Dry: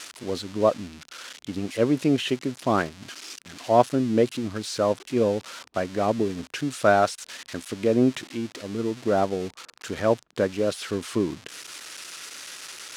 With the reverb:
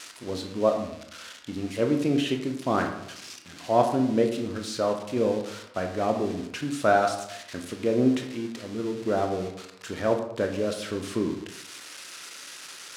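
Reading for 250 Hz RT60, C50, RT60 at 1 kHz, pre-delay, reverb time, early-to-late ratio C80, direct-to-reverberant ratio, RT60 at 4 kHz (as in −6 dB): 0.80 s, 7.5 dB, 0.80 s, 19 ms, 0.80 s, 10.0 dB, 4.0 dB, 0.45 s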